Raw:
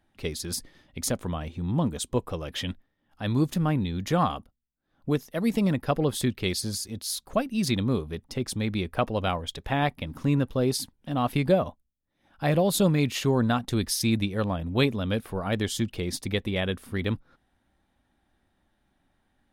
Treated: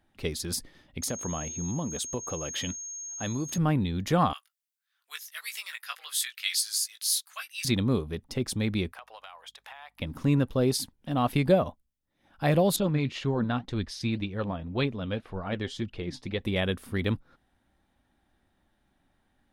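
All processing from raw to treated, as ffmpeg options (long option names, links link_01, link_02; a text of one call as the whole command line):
ffmpeg -i in.wav -filter_complex "[0:a]asettb=1/sr,asplit=3[link_01][link_02][link_03];[link_01]atrim=end=1.024[link_04];[link_02]atrim=start=1.02:end=3.58,asetpts=PTS-STARTPTS,afade=type=in:duration=0.004:curve=qsin,afade=type=out:start_time=2.556:duration=0.004:curve=qsin,highpass=frequency=120:poles=1,aeval=exprs='val(0)+0.0158*sin(2*PI*6500*n/s)':channel_layout=same,acompressor=threshold=-27dB:ratio=6:attack=3.2:release=140:knee=1:detection=peak[link_05];[link_03]atrim=start=3.576[link_06];[link_04][link_05]acrossfade=duration=0.004:curve1=hsin:curve2=qsin[link_07];[link_07][link_06]acrossfade=duration=0.004:curve1=qsin:curve2=hsin,asettb=1/sr,asplit=3[link_08][link_09][link_10];[link_08]atrim=end=4.334[link_11];[link_09]atrim=start=4.33:end=7.65,asetpts=PTS-STARTPTS,afade=type=in:duration=0.004:curve=qsin,afade=type=out:start_time=3.316:duration=0.004:curve=qsin,highpass=frequency=1500:width=0.5412,highpass=frequency=1500:width=1.3066,highshelf=frequency=5300:gain=6,asplit=2[link_12][link_13];[link_13]adelay=18,volume=-5dB[link_14];[link_12][link_14]amix=inputs=2:normalize=0,atrim=end_sample=146412[link_15];[link_10]atrim=start=7.646[link_16];[link_11][link_15]acrossfade=duration=0.004:curve1=hsin:curve2=qsin[link_17];[link_17][link_16]acrossfade=duration=0.004:curve1=qsin:curve2=hsin,asettb=1/sr,asplit=3[link_18][link_19][link_20];[link_18]atrim=end=8.924[link_21];[link_19]atrim=start=8.92:end=10,asetpts=PTS-STARTPTS,afade=type=in:duration=0.004:curve=qsin,afade=type=out:start_time=1.076:duration=0.004:curve=qsin,highpass=frequency=800:width=0.5412,highpass=frequency=800:width=1.3066,acompressor=threshold=-42dB:ratio=8:attack=3.2:release=140:knee=1:detection=peak,aeval=exprs='val(0)+0.000158*(sin(2*PI*50*n/s)+sin(2*PI*2*50*n/s)/2+sin(2*PI*3*50*n/s)/3+sin(2*PI*4*50*n/s)/4+sin(2*PI*5*50*n/s)/5)':channel_layout=same[link_22];[link_20]atrim=start=9.996[link_23];[link_21][link_22]acrossfade=duration=0.004:curve1=hsin:curve2=qsin[link_24];[link_24][link_23]acrossfade=duration=0.004:curve1=qsin:curve2=hsin,asettb=1/sr,asplit=3[link_25][link_26][link_27];[link_25]atrim=end=12.764[link_28];[link_26]atrim=start=12.76:end=16.41,asetpts=PTS-STARTPTS,afade=type=in:duration=0.004:curve=qsin,afade=type=out:start_time=3.646:duration=0.004:curve=qsin,lowpass=4100,flanger=delay=0.6:depth=7.3:regen=61:speed=1.9:shape=sinusoidal[link_29];[link_27]atrim=start=16.406[link_30];[link_28][link_29]acrossfade=duration=0.004:curve1=hsin:curve2=qsin[link_31];[link_31][link_30]acrossfade=duration=0.004:curve1=qsin:curve2=hsin" out.wav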